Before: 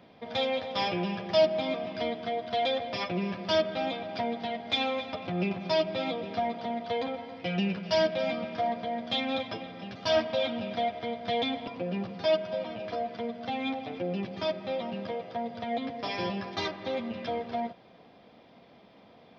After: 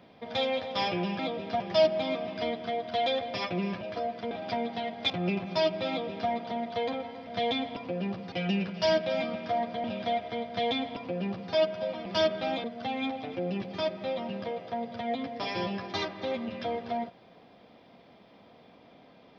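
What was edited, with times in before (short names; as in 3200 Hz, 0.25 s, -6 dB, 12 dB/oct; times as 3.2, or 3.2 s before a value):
3.4–3.98 swap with 12.77–13.27
4.77–5.24 cut
6.03–6.44 copy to 1.19
8.93–10.55 cut
11.18–12.23 copy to 7.41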